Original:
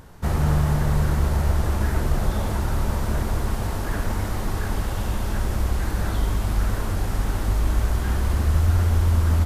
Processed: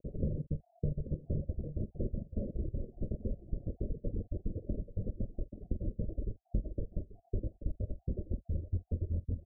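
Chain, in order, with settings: random holes in the spectrogram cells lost 61%; peaking EQ 62 Hz -7 dB 0.61 oct; compression 8:1, threshold -42 dBFS, peak gain reduction 24 dB; steep low-pass 600 Hz 96 dB/octave; doubling 47 ms -8.5 dB; delay 834 ms -8 dB; reverb removal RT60 1.2 s; trim +11 dB

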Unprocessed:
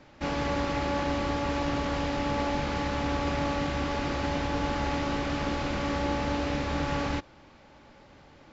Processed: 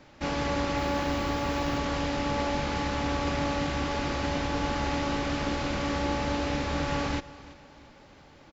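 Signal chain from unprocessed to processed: treble shelf 4.9 kHz +5 dB; 0.76–1.77 s: added noise violet -62 dBFS; feedback delay 338 ms, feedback 41%, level -19 dB

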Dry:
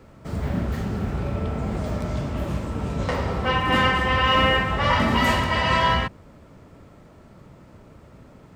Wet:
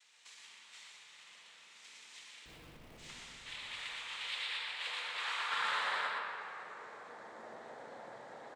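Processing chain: high-pass 230 Hz 12 dB/octave; bass shelf 400 Hz +10.5 dB; compression 6:1, threshold -34 dBFS, peak gain reduction 19.5 dB; frequency shift -290 Hz; high-pass sweep 3.2 kHz -> 630 Hz, 4.33–7.37 s; one-sided clip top -29.5 dBFS; noise-vocoded speech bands 6; 2.45–2.98 s: Schmitt trigger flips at -51 dBFS; on a send: delay 120 ms -5 dB; on the sum: simulated room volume 170 m³, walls hard, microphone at 0.46 m; trim -2.5 dB

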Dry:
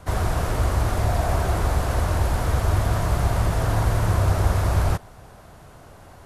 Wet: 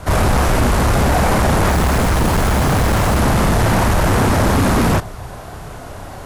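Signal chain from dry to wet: chorus voices 2, 1.5 Hz, delay 30 ms, depth 3 ms; sine folder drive 13 dB, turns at -10.5 dBFS; 1.69–3.18 s: short-mantissa float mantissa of 2-bit

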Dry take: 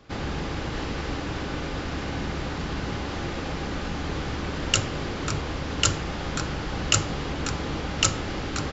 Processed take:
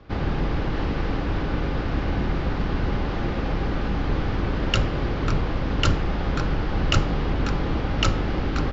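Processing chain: octave divider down 2 oct, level +3 dB; low-pass 5.5 kHz 24 dB/octave; treble shelf 3.1 kHz -10.5 dB; trim +3.5 dB

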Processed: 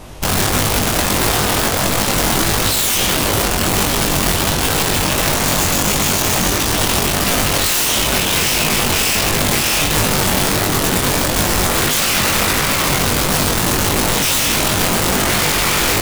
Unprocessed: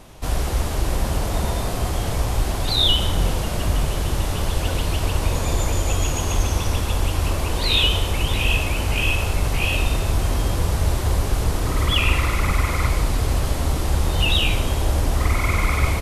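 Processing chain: in parallel at -2 dB: peak limiter -16 dBFS, peak gain reduction 10.5 dB; on the sum: integer overflow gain 15 dB; chorus 1.5 Hz, delay 19.5 ms, depth 2.6 ms; trim +7 dB

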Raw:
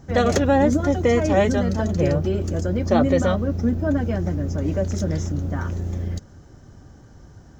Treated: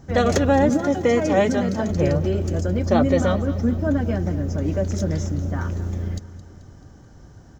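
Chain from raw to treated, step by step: 0.69–1.90 s: high-pass 110 Hz 24 dB/octave; feedback delay 217 ms, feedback 54%, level -16 dB

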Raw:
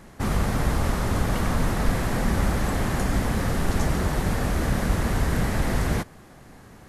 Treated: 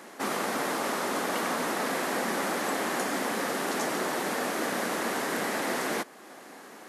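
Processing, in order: high-pass 260 Hz 24 dB/octave; bass shelf 360 Hz -3.5 dB; in parallel at -2 dB: compression, threshold -46 dBFS, peak gain reduction 17.5 dB

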